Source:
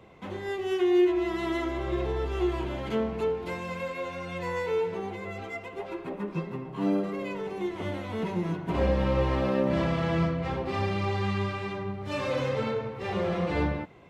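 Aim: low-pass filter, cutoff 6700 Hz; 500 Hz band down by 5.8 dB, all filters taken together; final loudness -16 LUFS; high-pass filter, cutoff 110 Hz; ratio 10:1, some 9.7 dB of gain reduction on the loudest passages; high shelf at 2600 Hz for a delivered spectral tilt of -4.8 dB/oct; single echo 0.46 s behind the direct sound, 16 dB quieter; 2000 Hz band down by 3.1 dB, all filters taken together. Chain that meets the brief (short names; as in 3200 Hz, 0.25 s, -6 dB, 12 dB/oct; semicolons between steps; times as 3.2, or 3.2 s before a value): HPF 110 Hz; LPF 6700 Hz; bell 500 Hz -8 dB; bell 2000 Hz -6.5 dB; high shelf 2600 Hz +7 dB; compressor 10:1, threshold -33 dBFS; echo 0.46 s -16 dB; gain +22 dB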